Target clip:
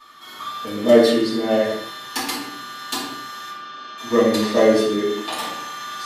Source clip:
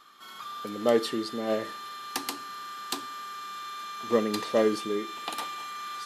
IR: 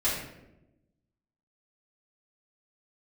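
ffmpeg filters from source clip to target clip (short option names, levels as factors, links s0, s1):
-filter_complex "[0:a]asettb=1/sr,asplit=3[s0][s1][s2];[s0]atrim=end=3.504[s3];[s1]atrim=start=3.5:end=3.98,asetpts=PTS-STARTPTS,afade=t=in:d=0.004:c=qsin,afade=t=out:st=0.476:d=0.004:c=qsin,highpass=180,equalizer=f=930:t=q:w=4:g=-7,equalizer=f=2000:t=q:w=4:g=-10,equalizer=f=3800:t=q:w=4:g=-8,lowpass=f=4500:w=0.5412,lowpass=f=4500:w=1.3066[s4];[s2]atrim=start=3.976[s5];[s3][s4]acrossfade=d=0.004:c1=hsin:c2=qsin[s6];[s6][s5]acrossfade=d=0.004:c1=qsin:c2=hsin[s7];[1:a]atrim=start_sample=2205,afade=t=out:st=0.31:d=0.01,atrim=end_sample=14112[s8];[s7][s8]afir=irnorm=-1:irlink=0"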